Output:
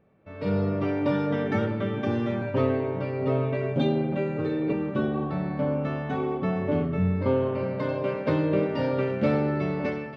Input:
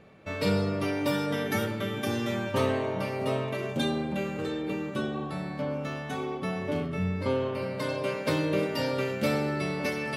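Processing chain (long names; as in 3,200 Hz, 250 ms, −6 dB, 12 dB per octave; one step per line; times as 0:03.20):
0:02.41–0:04.73: comb filter 7.2 ms, depth 85%
automatic gain control gain up to 15.5 dB
head-to-tape spacing loss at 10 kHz 37 dB
level −8 dB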